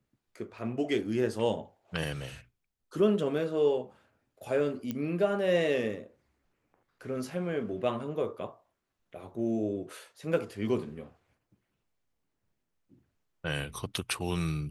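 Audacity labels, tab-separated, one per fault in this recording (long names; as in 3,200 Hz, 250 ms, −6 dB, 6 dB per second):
0.580000	0.580000	drop-out 2.6 ms
4.910000	4.910000	click −20 dBFS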